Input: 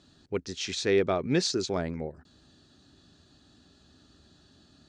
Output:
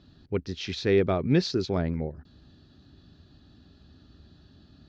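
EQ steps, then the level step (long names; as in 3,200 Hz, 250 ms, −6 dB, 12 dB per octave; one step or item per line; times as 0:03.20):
high-frequency loss of the air 370 metres
low-shelf EQ 210 Hz +10.5 dB
parametric band 5,800 Hz +14 dB 1.5 octaves
0.0 dB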